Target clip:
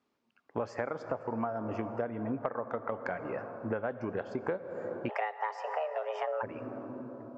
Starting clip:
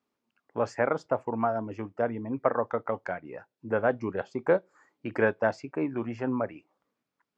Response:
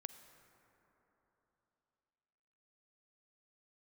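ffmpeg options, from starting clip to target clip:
-filter_complex "[0:a]lowpass=5.9k,asplit=2[a][b];[1:a]atrim=start_sample=2205,asetrate=30870,aresample=44100[c];[b][c]afir=irnorm=-1:irlink=0,volume=7.5dB[d];[a][d]amix=inputs=2:normalize=0,acompressor=threshold=-25dB:ratio=12,asplit=3[e][f][g];[e]afade=t=out:st=5.08:d=0.02[h];[f]afreqshift=310,afade=t=in:st=5.08:d=0.02,afade=t=out:st=6.42:d=0.02[i];[g]afade=t=in:st=6.42:d=0.02[j];[h][i][j]amix=inputs=3:normalize=0,volume=-5dB"

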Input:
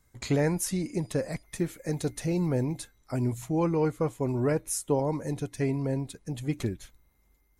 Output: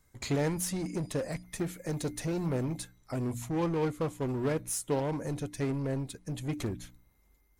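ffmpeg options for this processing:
-filter_complex "[0:a]bandreject=f=59.92:t=h:w=4,bandreject=f=119.84:t=h:w=4,bandreject=f=179.76:t=h:w=4,bandreject=f=239.68:t=h:w=4,bandreject=f=299.6:t=h:w=4,asplit=2[a][b];[b]aeval=exprs='0.0266*(abs(mod(val(0)/0.0266+3,4)-2)-1)':c=same,volume=-5dB[c];[a][c]amix=inputs=2:normalize=0,volume=-4dB"

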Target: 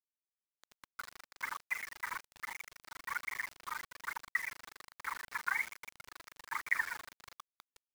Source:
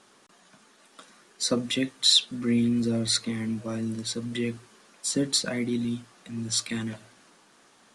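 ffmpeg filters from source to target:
-filter_complex "[0:a]asplit=2[a][b];[b]aecho=0:1:92|184|276:0.075|0.0337|0.0152[c];[a][c]amix=inputs=2:normalize=0,acompressor=threshold=-28dB:ratio=6,aphaser=in_gain=1:out_gain=1:delay=3.4:decay=0.78:speed=1.2:type=triangular,aemphasis=mode=production:type=75kf,aeval=exprs='(tanh(5.01*val(0)+0.45)-tanh(0.45))/5.01':c=same,tremolo=f=25:d=0.947,flanger=delay=6:depth=9.9:regen=87:speed=0.48:shape=sinusoidal,dynaudnorm=f=250:g=5:m=12dB,asuperpass=centerf=1400:order=20:qfactor=1,equalizer=f=1.7k:t=o:w=1.3:g=-3.5,acrusher=bits=7:mix=0:aa=0.000001,volume=2.5dB"

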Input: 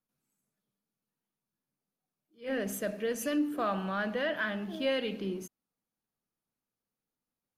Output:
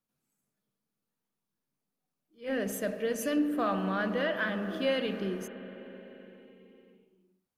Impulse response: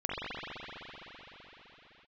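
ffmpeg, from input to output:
-filter_complex "[0:a]asplit=2[a][b];[b]lowpass=f=1.5k:p=1[c];[1:a]atrim=start_sample=2205[d];[c][d]afir=irnorm=-1:irlink=0,volume=-15dB[e];[a][e]amix=inputs=2:normalize=0"

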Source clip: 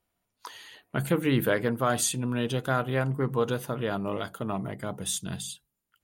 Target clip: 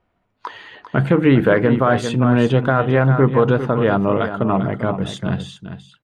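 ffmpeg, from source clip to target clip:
-af "lowpass=2k,aecho=1:1:396:0.299,alimiter=level_in=16.5dB:limit=-1dB:release=50:level=0:latency=1,volume=-3dB"

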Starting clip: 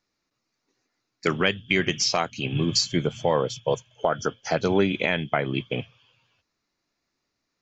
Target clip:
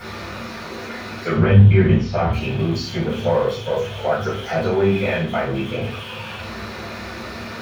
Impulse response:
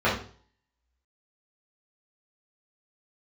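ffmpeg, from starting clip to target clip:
-filter_complex "[0:a]aeval=exprs='val(0)+0.5*0.075*sgn(val(0))':c=same,asettb=1/sr,asplit=3[a][b][c];[a]atrim=end=1.364[d];[b]atrim=start=1.36:end=2.33,asetpts=PTS-STARTPTS,afade=t=in:d=0.004:c=qsin,afade=t=out:st=0.966:d=0.004:c=qsin,aemphasis=mode=reproduction:type=riaa[e];[c]atrim=start=2.326[f];[d][e]acrossfade=d=0.004:c1=hsin:c2=qsin[g];[g][f]acrossfade=d=0.004:c1=qsin:c2=hsin[h];[1:a]atrim=start_sample=2205[i];[h][i]afir=irnorm=-1:irlink=0,volume=-17.5dB"

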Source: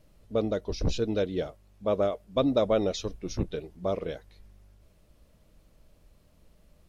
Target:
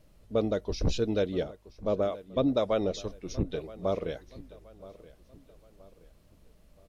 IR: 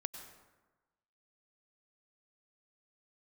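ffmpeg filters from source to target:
-filter_complex "[0:a]asettb=1/sr,asplit=3[a][b][c];[a]atrim=end=1.434[d];[b]atrim=start=1.43:end=3.5,asetpts=PTS-STARTPTS,afade=t=in:d=0.004:c=qsin,afade=t=out:st=2.066:d=0.004:c=qsin,acrossover=split=630[e][f];[e]aeval=exprs='val(0)*(1-0.5/2+0.5/2*cos(2*PI*2*n/s))':c=same[g];[f]aeval=exprs='val(0)*(1-0.5/2-0.5/2*cos(2*PI*2*n/s))':c=same[h];[g][h]amix=inputs=2:normalize=0[i];[c]atrim=start=3.496[j];[d][i]acrossfade=d=0.004:c1=hsin:c2=qsin[k];[k][j]acrossfade=d=0.004:c1=qsin:c2=hsin,asplit=2[l][m];[m]adelay=974,lowpass=f=4.9k:p=1,volume=-19dB,asplit=2[n][o];[o]adelay=974,lowpass=f=4.9k:p=1,volume=0.41,asplit=2[p][q];[q]adelay=974,lowpass=f=4.9k:p=1,volume=0.41[r];[l][n][p][r]amix=inputs=4:normalize=0"

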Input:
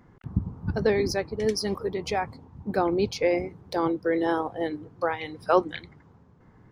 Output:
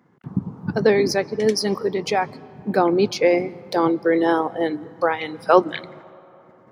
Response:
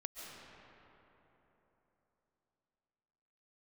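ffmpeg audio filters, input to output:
-filter_complex "[0:a]highpass=f=140:w=0.5412,highpass=f=140:w=1.3066,agate=range=-9dB:threshold=-55dB:ratio=16:detection=peak,asplit=2[a][b];[1:a]atrim=start_sample=2205,lowpass=6.3k[c];[b][c]afir=irnorm=-1:irlink=0,volume=-18dB[d];[a][d]amix=inputs=2:normalize=0,volume=6dB"

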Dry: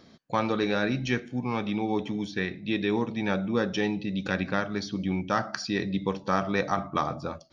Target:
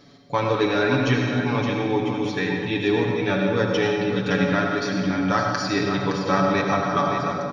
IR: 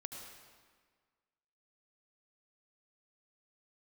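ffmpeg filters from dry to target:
-filter_complex "[0:a]aecho=1:1:7:0.84,aecho=1:1:566:0.398[a];[1:a]atrim=start_sample=2205[b];[a][b]afir=irnorm=-1:irlink=0,volume=6.5dB"

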